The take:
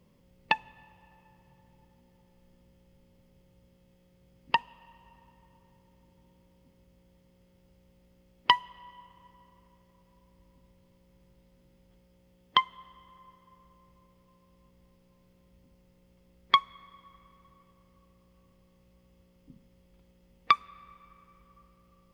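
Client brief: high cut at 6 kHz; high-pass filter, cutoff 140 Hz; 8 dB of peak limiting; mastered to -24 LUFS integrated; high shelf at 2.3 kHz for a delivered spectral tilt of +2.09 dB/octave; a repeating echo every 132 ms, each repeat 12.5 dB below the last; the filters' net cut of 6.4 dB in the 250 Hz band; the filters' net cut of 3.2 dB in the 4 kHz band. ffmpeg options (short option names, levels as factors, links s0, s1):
-af "highpass=140,lowpass=6000,equalizer=f=250:t=o:g=-8.5,highshelf=f=2300:g=3.5,equalizer=f=4000:t=o:g=-7.5,alimiter=limit=0.2:level=0:latency=1,aecho=1:1:132|264|396:0.237|0.0569|0.0137,volume=3.55"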